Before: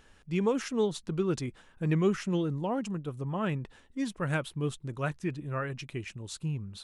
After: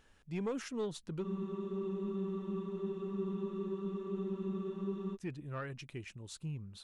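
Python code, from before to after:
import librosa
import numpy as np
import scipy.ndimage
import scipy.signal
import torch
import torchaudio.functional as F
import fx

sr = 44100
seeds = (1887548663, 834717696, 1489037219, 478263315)

y = 10.0 ** (-23.0 / 20.0) * np.tanh(x / 10.0 ** (-23.0 / 20.0))
y = fx.spec_freeze(y, sr, seeds[0], at_s=1.25, hold_s=3.89)
y = y * librosa.db_to_amplitude(-7.0)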